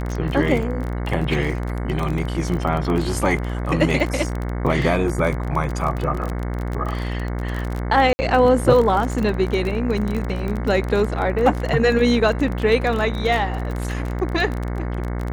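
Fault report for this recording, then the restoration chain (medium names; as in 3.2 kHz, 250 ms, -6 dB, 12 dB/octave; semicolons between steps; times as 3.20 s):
buzz 60 Hz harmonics 37 -25 dBFS
crackle 28 per s -23 dBFS
8.13–8.19 s: dropout 60 ms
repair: de-click; de-hum 60 Hz, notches 37; interpolate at 8.13 s, 60 ms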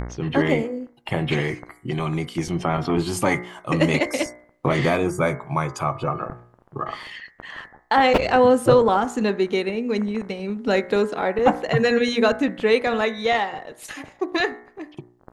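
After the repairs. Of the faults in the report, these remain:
nothing left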